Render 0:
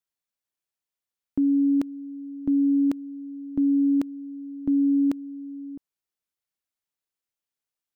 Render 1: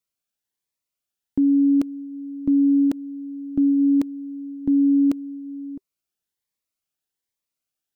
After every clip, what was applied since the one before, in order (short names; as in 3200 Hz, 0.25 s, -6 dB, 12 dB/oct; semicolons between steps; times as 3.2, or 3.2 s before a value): cascading phaser rising 1.2 Hz; gain +4 dB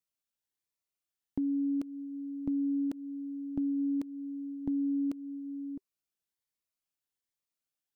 compressor 2.5:1, threshold -27 dBFS, peak gain reduction 7.5 dB; gain -6 dB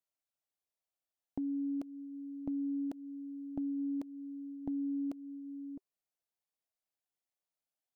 bell 680 Hz +10 dB 0.87 oct; gain -6 dB